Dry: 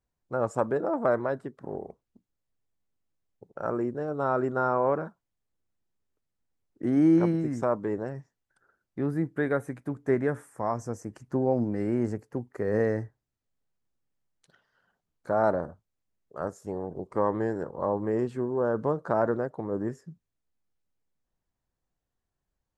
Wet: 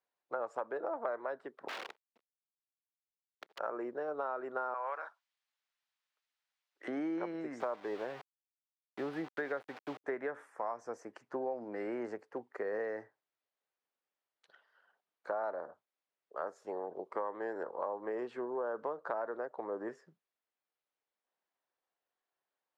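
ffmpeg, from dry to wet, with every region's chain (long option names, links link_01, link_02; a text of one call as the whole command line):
ffmpeg -i in.wav -filter_complex "[0:a]asettb=1/sr,asplit=3[link_01][link_02][link_03];[link_01]atrim=end=1.684[link_04];[link_02]atrim=start=1.68:end=3.59,asetpts=PTS-STARTPTS,afade=type=in:duration=0.004:curve=qsin,afade=type=out:start_time=1.906:duration=0.004:curve=qsin,aeval=exprs='(mod(70.8*val(0)+1,2)-1)/70.8':channel_layout=same,acrusher=bits=8:dc=4:mix=0:aa=0.000001[link_05];[link_03]atrim=start=3.586[link_06];[link_04][link_05]acrossfade=duration=0.004:curve1=hsin:curve2=qsin[link_07];[link_07][link_06]acrossfade=duration=0.004:curve1=qsin:curve2=hsin,asettb=1/sr,asplit=3[link_08][link_09][link_10];[link_08]atrim=end=4.744[link_11];[link_09]atrim=start=4.74:end=6.88,asetpts=PTS-STARTPTS,afade=type=in:duration=0.004:curve=qsin,afade=type=out:start_time=2.136:duration=0.004:curve=qsin,highpass=890,highshelf=frequency=2100:gain=11.5[link_12];[link_10]atrim=start=6.876[link_13];[link_11][link_12]acrossfade=duration=0.004:curve1=hsin:curve2=qsin[link_14];[link_14][link_13]acrossfade=duration=0.004:curve1=qsin:curve2=hsin,asettb=1/sr,asplit=3[link_15][link_16][link_17];[link_15]atrim=end=7.604[link_18];[link_16]atrim=start=7.6:end=10.04,asetpts=PTS-STARTPTS,afade=type=in:duration=0.004:curve=qsin,afade=type=out:start_time=2.436:duration=0.004:curve=qsin,lowshelf=frequency=130:gain=11,aeval=exprs='val(0)+0.00158*sin(2*PI*760*n/s)':channel_layout=same,aeval=exprs='val(0)*gte(abs(val(0)),0.0106)':channel_layout=same[link_19];[link_17]atrim=start=10.036[link_20];[link_18][link_19]acrossfade=duration=0.004:curve1=hsin:curve2=qsin[link_21];[link_21][link_20]acrossfade=duration=0.004:curve1=qsin:curve2=hsin,highpass=270,acrossover=split=430 4500:gain=0.178 1 0.1[link_22][link_23][link_24];[link_22][link_23][link_24]amix=inputs=3:normalize=0,acompressor=threshold=-35dB:ratio=6,volume=1dB" out.wav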